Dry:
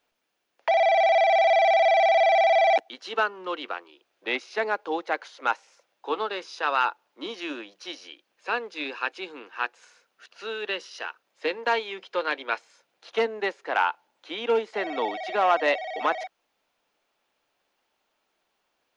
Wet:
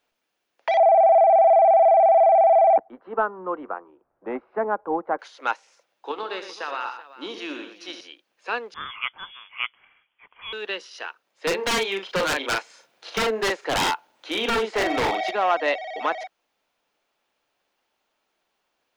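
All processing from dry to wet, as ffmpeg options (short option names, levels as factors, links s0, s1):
-filter_complex "[0:a]asettb=1/sr,asplit=3[s0][s1][s2];[s0]atrim=end=0.774[s3];[s1]atrim=start=0.77:end=5.19,asetpts=PTS-STARTPTS,afade=t=in:d=0.004:c=qsin,afade=t=out:st=4.416:d=0.004:c=qsin,lowpass=f=1200:w=0.5412,lowpass=f=1200:w=1.3066,acontrast=36,asubboost=boost=5.5:cutoff=160[s4];[s2]atrim=start=5.186[s5];[s3][s4]acrossfade=d=0.004:c1=hsin:c2=qsin[s6];[s6][s5]acrossfade=d=0.004:c1=qsin:c2=hsin,asettb=1/sr,asplit=3[s7][s8][s9];[s7]atrim=end=6.114[s10];[s8]atrim=start=6.11:end=8.01,asetpts=PTS-STARTPTS,afade=t=in:d=0.004:c=qsin,afade=t=out:st=1.896:d=0.004:c=qsin,acompressor=threshold=0.0501:ratio=4:attack=3.2:release=140:knee=1:detection=peak,aecho=1:1:71|117|381:0.299|0.335|0.158,atrim=end_sample=83790[s11];[s9]atrim=start=8.006[s12];[s10][s11]acrossfade=d=0.004:c1=hsin:c2=qsin[s13];[s13][s12]acrossfade=d=0.004:c1=qsin:c2=hsin,asettb=1/sr,asplit=3[s14][s15][s16];[s14]atrim=end=8.744[s17];[s15]atrim=start=8.74:end=10.53,asetpts=PTS-STARTPTS,afade=t=in:d=0.004:c=qsin,afade=t=out:st=1.786:d=0.004:c=qsin,highpass=420,lowpass=f=3200:t=q:w=0.5098,lowpass=f=3200:t=q:w=0.6013,lowpass=f=3200:t=q:w=0.9,lowpass=f=3200:t=q:w=2.563,afreqshift=-3800[s18];[s16]atrim=start=10.526[s19];[s17][s18]acrossfade=d=0.004:c1=hsin:c2=qsin[s20];[s20][s19]acrossfade=d=0.004:c1=qsin:c2=hsin,asettb=1/sr,asplit=3[s21][s22][s23];[s21]atrim=end=11.474[s24];[s22]atrim=start=11.47:end=15.31,asetpts=PTS-STARTPTS,afade=t=in:d=0.004:c=qsin,afade=t=out:st=3.836:d=0.004:c=qsin,acontrast=81,asplit=2[s25][s26];[s26]adelay=41,volume=0.562[s27];[s25][s27]amix=inputs=2:normalize=0,atrim=end_sample=169344,aeval=exprs='0.141*(abs(mod(val(0)/0.141+3,4)-2)-1)':c=same[s28];[s23]atrim=start=15.306[s29];[s24][s28]acrossfade=d=0.004:c1=hsin:c2=qsin[s30];[s30][s29]acrossfade=d=0.004:c1=qsin:c2=hsin"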